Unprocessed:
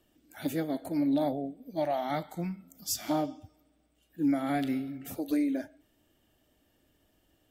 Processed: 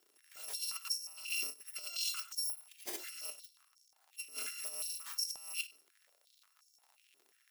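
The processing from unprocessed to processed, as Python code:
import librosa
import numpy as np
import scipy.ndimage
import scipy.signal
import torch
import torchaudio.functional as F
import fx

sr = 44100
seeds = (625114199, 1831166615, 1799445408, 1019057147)

y = fx.bit_reversed(x, sr, seeds[0], block=256)
y = fx.over_compress(y, sr, threshold_db=-33.0, ratio=-0.5)
y = fx.dmg_crackle(y, sr, seeds[1], per_s=82.0, level_db=-44.0)
y = fx.filter_held_highpass(y, sr, hz=5.6, low_hz=370.0, high_hz=5700.0)
y = y * librosa.db_to_amplitude(-8.5)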